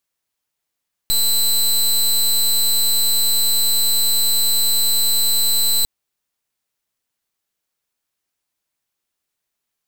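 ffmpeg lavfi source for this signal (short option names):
-f lavfi -i "aevalsrc='0.158*(2*lt(mod(4030*t,1),0.19)-1)':d=4.75:s=44100"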